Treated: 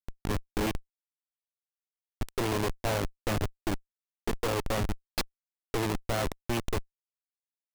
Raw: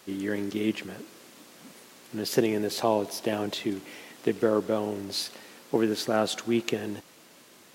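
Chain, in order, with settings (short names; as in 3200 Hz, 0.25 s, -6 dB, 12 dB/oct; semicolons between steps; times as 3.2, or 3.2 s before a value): added harmonics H 2 -17 dB, 3 -30 dB, 8 -13 dB, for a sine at -8 dBFS; Schmitt trigger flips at -30.5 dBFS; gain +1 dB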